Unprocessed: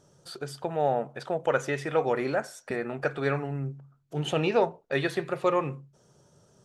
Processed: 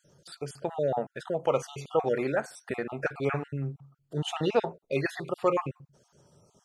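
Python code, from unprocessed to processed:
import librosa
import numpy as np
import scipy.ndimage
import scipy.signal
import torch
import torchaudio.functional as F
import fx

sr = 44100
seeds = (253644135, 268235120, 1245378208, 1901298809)

y = fx.spec_dropout(x, sr, seeds[0], share_pct=33)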